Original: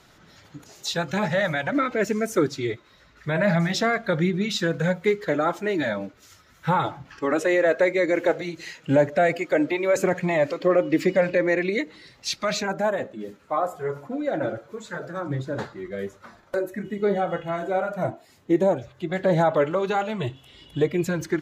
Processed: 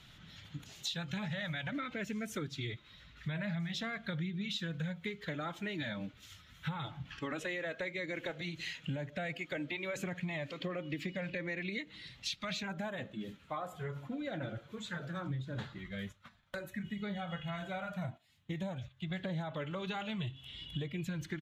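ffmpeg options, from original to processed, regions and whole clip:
-filter_complex "[0:a]asettb=1/sr,asplit=3[a][b][c];[a]atrim=end=15.784[d];[b]atrim=start=15.78:end=19.11,asetpts=PTS-STARTPTS,afade=t=in:d=0.004:c=qsin,afade=t=out:st=3.326:d=0.004:c=qsin,agate=range=-11dB:threshold=-44dB:ratio=16:release=100:detection=peak,equalizer=f=360:w=1.5:g=-10[e];[c]atrim=start=19.106[f];[d][e]acrossfade=d=0.004:c1=hsin:c2=qsin[g];[g][f]acrossfade=d=0.004:c1=qsin:c2=hsin,firequalizer=gain_entry='entry(150,0);entry(370,-14);entry(3300,4);entry(4800,-8)':delay=0.05:min_phase=1,acompressor=threshold=-37dB:ratio=6,volume=1dB"

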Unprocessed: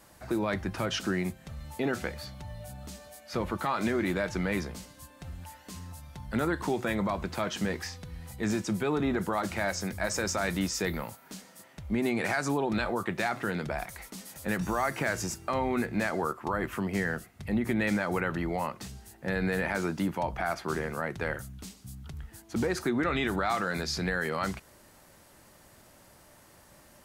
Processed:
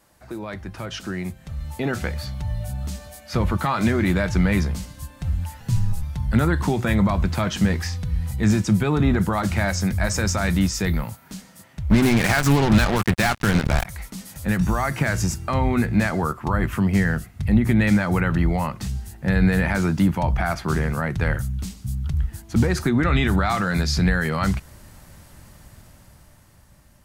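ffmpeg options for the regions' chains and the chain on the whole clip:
-filter_complex "[0:a]asettb=1/sr,asplit=3[a][b][c];[a]atrim=end=5.604[d];[b]atrim=start=5.6:end=6.03,asetpts=PTS-STARTPTS,afade=t=in:d=0.004:c=qsin,afade=t=out:st=0.426:d=0.004:c=qsin,equalizer=f=200:t=o:w=1.3:g=11,afreqshift=-72[e];[c]atrim=start=6.026[f];[d][e]acrossfade=d=0.004:c1=hsin:c2=qsin[g];[g][f]acrossfade=d=0.004:c1=qsin:c2=hsin,asettb=1/sr,asplit=3[h][i][j];[h]atrim=end=11.904[k];[i]atrim=start=11.9:end=13.85,asetpts=PTS-STARTPTS,afade=t=in:d=0.004:c=qsin,afade=t=out:st=1.946:d=0.004:c=qsin,acrusher=bits=4:mix=0:aa=0.5,acontrast=37[l];[j]atrim=start=13.846[m];[k][l]acrossfade=d=0.004:c1=hsin:c2=qsin[n];[n][m]acrossfade=d=0.004:c1=qsin:c2=hsin,asubboost=boost=4.5:cutoff=170,dynaudnorm=f=290:g=11:m=10.5dB,volume=-3dB"

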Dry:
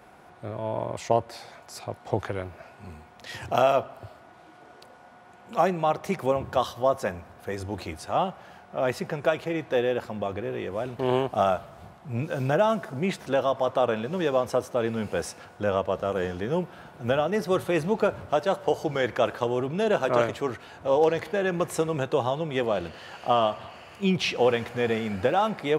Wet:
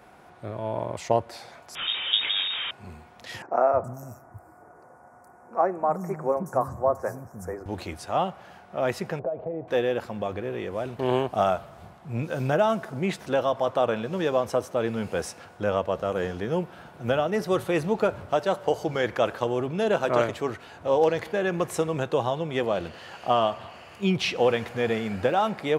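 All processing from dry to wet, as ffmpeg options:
-filter_complex "[0:a]asettb=1/sr,asplit=3[a][b][c];[a]atrim=end=1.754[d];[b]atrim=start=1.75:end=2.71,asetpts=PTS-STARTPTS,afade=t=in:d=0.004:c=qsin,afade=t=out:st=0.956:d=0.004:c=qsin,aeval=exprs='val(0)+0.5*0.0531*sgn(val(0))':c=same,lowpass=f=3.2k:t=q:w=0.5098,lowpass=f=3.2k:t=q:w=0.6013,lowpass=f=3.2k:t=q:w=0.9,lowpass=f=3.2k:t=q:w=2.563,afreqshift=-3800[e];[c]atrim=start=2.706[f];[d][e]acrossfade=d=0.004:c1=hsin:c2=qsin[g];[g][f]acrossfade=d=0.004:c1=qsin:c2=hsin,asettb=1/sr,asplit=3[h][i][j];[h]atrim=end=3.424[k];[i]atrim=start=3.42:end=7.66,asetpts=PTS-STARTPTS,afade=t=in:d=0.004:c=qsin,afade=t=out:st=4.236:d=0.004:c=qsin,asuperstop=centerf=3300:order=4:qfactor=0.61,acrossover=split=240|4400[l][m][n];[l]adelay=310[o];[n]adelay=420[p];[o][m][p]amix=inputs=3:normalize=0,atrim=end_sample=186984[q];[j]atrim=start=7.656[r];[k][q]acrossfade=d=0.004:c1=hsin:c2=qsin[s];[s][r]acrossfade=d=0.004:c1=qsin:c2=hsin,asettb=1/sr,asplit=3[t][u][v];[t]atrim=end=9.194[w];[u]atrim=start=9.19:end=9.68,asetpts=PTS-STARTPTS,afade=t=in:d=0.004:c=qsin,afade=t=out:st=0.486:d=0.004:c=qsin,acompressor=threshold=-30dB:ratio=16:attack=3.2:release=140:knee=1:detection=peak,lowpass=f=620:t=q:w=2.8,bandreject=f=350:w=7.9[x];[v]atrim=start=9.676[y];[w][x]acrossfade=d=0.004:c1=hsin:c2=qsin[z];[z][y]acrossfade=d=0.004:c1=qsin:c2=hsin"

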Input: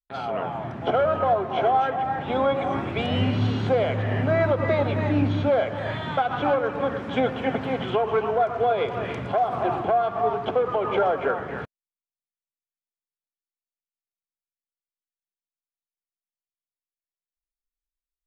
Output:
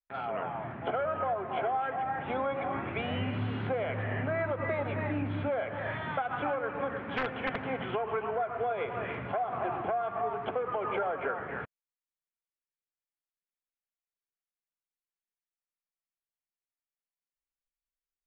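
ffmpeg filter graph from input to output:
-filter_complex "[0:a]asettb=1/sr,asplit=3[a][b][c];[a]atrim=end=7.124[d];[b]atrim=start=7.12:end=7.62,asetpts=PTS-STARTPTS,afade=t=in:d=0.004:c=qsin,afade=t=out:st=0.496:d=0.004:c=qsin,aemphasis=mode=production:type=50fm,aeval=exprs='(mod(5.96*val(0)+1,2)-1)/5.96':c=same[e];[c]atrim=start=7.616[f];[d][e]acrossfade=d=0.004:c1=hsin:c2=qsin[g];[g][f]acrossfade=d=0.004:c1=qsin:c2=hsin,lowpass=f=2.4k:w=0.5412,lowpass=f=2.4k:w=1.3066,tiltshelf=f=1.3k:g=-5,acompressor=threshold=-26dB:ratio=3,volume=-3dB"

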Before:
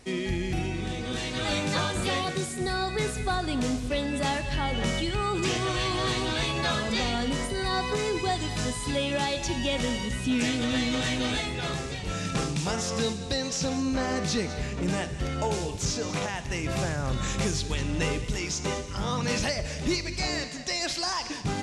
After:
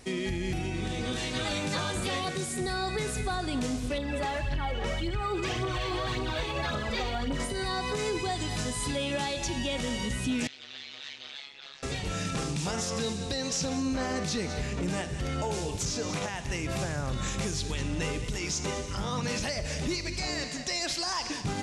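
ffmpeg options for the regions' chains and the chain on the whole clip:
-filter_complex "[0:a]asettb=1/sr,asplit=3[a][b][c];[a]atrim=end=3.984[d];[b]atrim=start=3.98:end=7.4,asetpts=PTS-STARTPTS,afade=t=in:d=0.004:c=qsin,afade=t=out:st=3.416:d=0.004:c=qsin,lowpass=f=2.3k:p=1,equalizer=f=180:w=1.3:g=-6,aphaser=in_gain=1:out_gain=1:delay=2.6:decay=0.49:speed=1.8:type=triangular[e];[c]atrim=start=7.396[f];[d][e]acrossfade=d=0.004:c1=hsin:c2=qsin[g];[g][f]acrossfade=d=0.004:c1=qsin:c2=hsin,asettb=1/sr,asplit=3[h][i][j];[h]atrim=end=10.474[k];[i]atrim=start=10.47:end=11.83,asetpts=PTS-STARTPTS,afade=t=in:d=0.004:c=qsin,afade=t=out:st=1.356:d=0.004:c=qsin,lowpass=f=4.4k:w=0.5412,lowpass=f=4.4k:w=1.3066,aderivative,tremolo=f=140:d=1[l];[j]atrim=start=11.826[m];[k][l]acrossfade=d=0.004:c1=hsin:c2=qsin[n];[n][m]acrossfade=d=0.004:c1=qsin:c2=hsin,highshelf=f=9.2k:g=4.5,alimiter=limit=-23.5dB:level=0:latency=1:release=138,volume=1dB"

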